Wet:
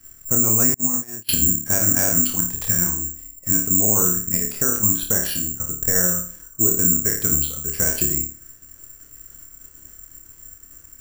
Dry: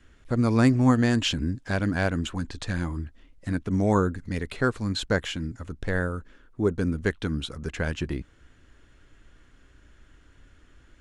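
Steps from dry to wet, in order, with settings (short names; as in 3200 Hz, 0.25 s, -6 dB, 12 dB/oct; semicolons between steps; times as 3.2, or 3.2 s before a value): 2.99–3.67 block floating point 5-bit; level quantiser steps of 9 dB; high shelf 4400 Hz -8 dB; flutter echo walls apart 4.8 m, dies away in 0.42 s; limiter -20.5 dBFS, peak gain reduction 11.5 dB; 0.74–1.29 gate -25 dBFS, range -37 dB; 5–5.87 notch 2200 Hz, Q 7.3; careless resampling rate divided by 6×, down filtered, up zero stuff; gain +3.5 dB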